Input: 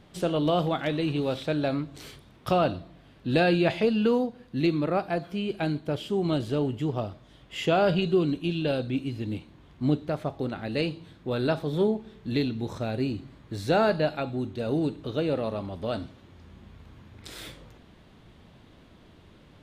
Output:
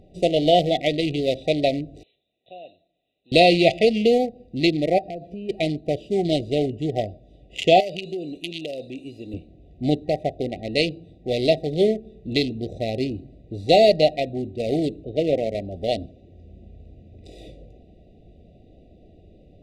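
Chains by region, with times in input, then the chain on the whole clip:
0:02.03–0:03.32: linear-phase brick-wall low-pass 4,100 Hz + first difference
0:04.98–0:05.49: high-shelf EQ 8,400 Hz −5.5 dB + downward compressor 10 to 1, threshold −32 dBFS
0:07.80–0:09.34: RIAA equalisation recording + downward compressor 5 to 1, threshold −30 dBFS
0:15.04–0:15.55: low-pass filter 2,600 Hz + multiband upward and downward expander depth 40%
whole clip: adaptive Wiener filter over 41 samples; brick-wall band-stop 770–1,900 Hz; octave-band graphic EQ 125/250/1,000/4,000/8,000 Hz −7/−5/+8/+5/+7 dB; level +8 dB

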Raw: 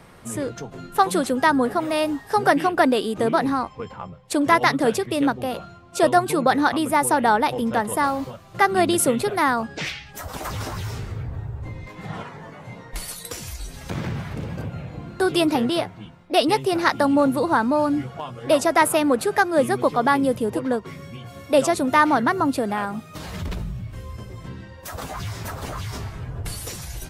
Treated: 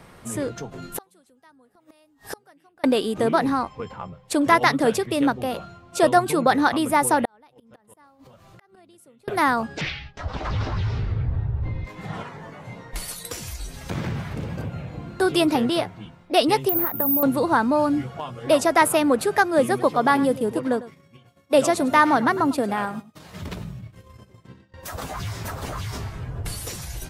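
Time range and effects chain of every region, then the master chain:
0:00.82–0:02.84: gate with flip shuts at −19 dBFS, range −37 dB + high-shelf EQ 4,300 Hz +8 dB
0:07.25–0:09.28: gate with flip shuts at −16 dBFS, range −33 dB + downward compressor 8 to 1, threshold −46 dBFS
0:09.81–0:11.85: noise gate with hold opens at −29 dBFS, closes at −33 dBFS + low-pass filter 4,600 Hz 24 dB per octave + low-shelf EQ 110 Hz +10.5 dB
0:16.69–0:17.23: downward compressor 10 to 1, threshold −20 dBFS + head-to-tape spacing loss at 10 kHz 45 dB + bad sample-rate conversion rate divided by 3×, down none, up zero stuff
0:19.59–0:24.74: downward expander −28 dBFS + high-pass filter 100 Hz + single-tap delay 101 ms −16.5 dB
whole clip: no processing

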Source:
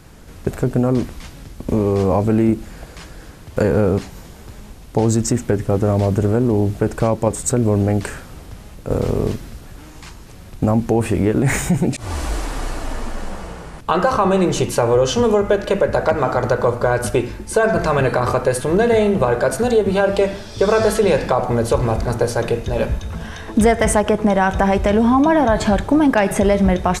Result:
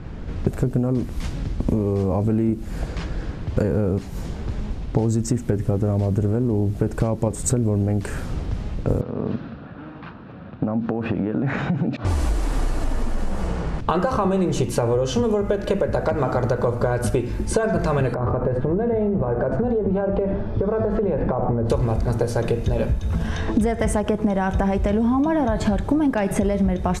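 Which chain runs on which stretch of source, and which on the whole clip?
0:09.01–0:12.05: loudspeaker in its box 200–3,400 Hz, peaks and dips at 380 Hz −9 dB, 890 Hz −3 dB, 1,400 Hz +4 dB, 2,100 Hz −9 dB, 3,100 Hz −5 dB + downward compressor, threshold −24 dBFS
0:18.14–0:21.70: low-pass filter 1,200 Hz + downward compressor 4 to 1, threshold −20 dBFS
whole clip: low-shelf EQ 450 Hz +9 dB; low-pass that shuts in the quiet parts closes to 2,600 Hz, open at −14.5 dBFS; downward compressor 6 to 1, threshold −20 dBFS; level +2 dB

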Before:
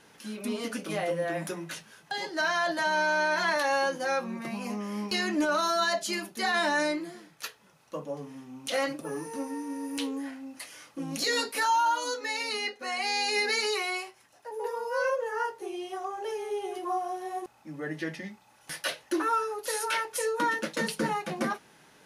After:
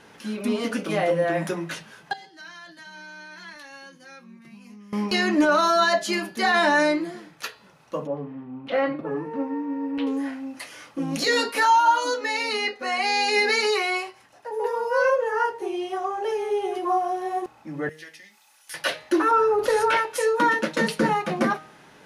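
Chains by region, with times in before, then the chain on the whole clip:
0:02.13–0:04.93: guitar amp tone stack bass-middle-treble 6-0-2 + one half of a high-frequency compander decoder only
0:08.07–0:10.07: high-frequency loss of the air 420 metres + one half of a high-frequency compander decoder only
0:17.89–0:18.74: first difference + upward compression, threshold −51 dBFS
0:19.31–0:19.97: spectral tilt −3 dB per octave + envelope flattener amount 50%
whole clip: high-shelf EQ 5,100 Hz −10 dB; hum removal 155.6 Hz, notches 32; level +8 dB

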